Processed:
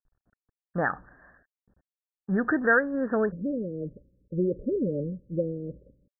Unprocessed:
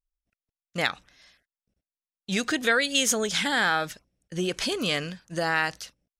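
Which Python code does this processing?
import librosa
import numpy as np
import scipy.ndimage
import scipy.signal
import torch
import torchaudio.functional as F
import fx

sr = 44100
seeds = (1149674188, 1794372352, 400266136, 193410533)

y = fx.law_mismatch(x, sr, coded='mu')
y = fx.cheby1_lowpass(y, sr, hz=fx.steps((0.0, 1800.0), (3.3, 580.0)), order=10)
y = y * 10.0 ** (2.5 / 20.0)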